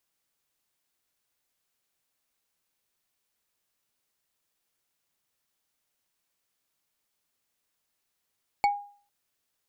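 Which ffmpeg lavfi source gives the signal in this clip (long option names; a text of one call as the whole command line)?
ffmpeg -f lavfi -i "aevalsrc='0.141*pow(10,-3*t/0.45)*sin(2*PI*815*t)+0.0631*pow(10,-3*t/0.133)*sin(2*PI*2247*t)+0.0282*pow(10,-3*t/0.059)*sin(2*PI*4404.3*t)+0.0126*pow(10,-3*t/0.033)*sin(2*PI*7280.4*t)+0.00562*pow(10,-3*t/0.02)*sin(2*PI*10872.1*t)':duration=0.45:sample_rate=44100" out.wav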